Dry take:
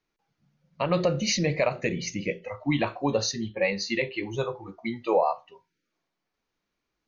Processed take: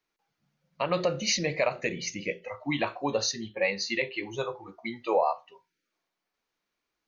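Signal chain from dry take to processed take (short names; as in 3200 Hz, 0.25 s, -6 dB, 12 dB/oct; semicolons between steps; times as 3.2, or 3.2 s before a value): low shelf 290 Hz -10 dB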